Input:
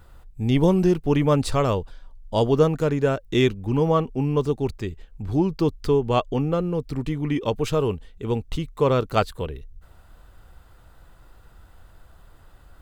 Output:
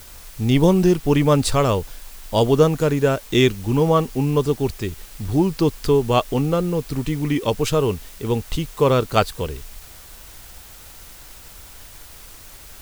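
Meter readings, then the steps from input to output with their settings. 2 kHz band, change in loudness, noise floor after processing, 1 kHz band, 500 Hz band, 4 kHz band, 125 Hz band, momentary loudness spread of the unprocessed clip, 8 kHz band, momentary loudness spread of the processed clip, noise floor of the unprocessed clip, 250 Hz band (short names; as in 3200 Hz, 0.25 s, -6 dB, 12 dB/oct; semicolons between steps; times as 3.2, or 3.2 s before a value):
+4.5 dB, +3.5 dB, -42 dBFS, +3.5 dB, +3.0 dB, +6.5 dB, +3.0 dB, 9 LU, +10.5 dB, 13 LU, -52 dBFS, +3.0 dB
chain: high shelf 4200 Hz +7.5 dB; in parallel at -7.5 dB: requantised 6-bit, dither triangular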